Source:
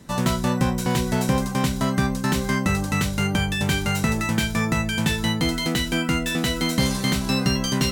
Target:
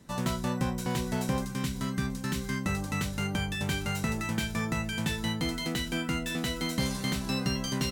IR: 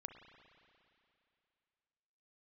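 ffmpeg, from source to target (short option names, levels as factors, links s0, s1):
-filter_complex "[0:a]asettb=1/sr,asplit=3[s0][s1][s2];[s0]atrim=end=1.454[s3];[s1]atrim=start=1.45:end=2.66,asetpts=PTS-STARTPTS,afade=t=in:d=0.004:c=qsin,afade=t=out:st=1.206:d=0.004:c=qsin,equalizer=f=690:w=1.5:g=-12[s4];[s2]atrim=start=2.656[s5];[s3][s4]acrossfade=d=0.004:c1=hsin:c2=qsin[s6];[s6][s5]acrossfade=d=0.004:c1=qsin:c2=hsin,aecho=1:1:887:0.0944,volume=0.376"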